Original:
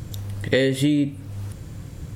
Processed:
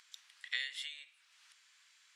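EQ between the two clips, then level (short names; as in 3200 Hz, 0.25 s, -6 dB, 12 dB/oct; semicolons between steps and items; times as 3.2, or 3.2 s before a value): Bessel high-pass 2000 Hz, order 4; differentiator; tape spacing loss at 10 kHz 33 dB; +9.5 dB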